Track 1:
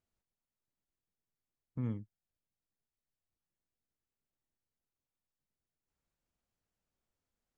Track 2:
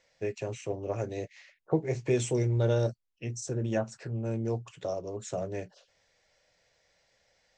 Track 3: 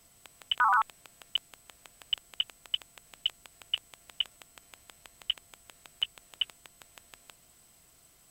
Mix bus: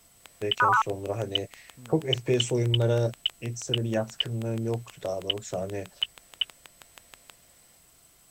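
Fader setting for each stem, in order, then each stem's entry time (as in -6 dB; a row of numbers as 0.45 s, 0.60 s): -12.5 dB, +2.0 dB, +2.5 dB; 0.00 s, 0.20 s, 0.00 s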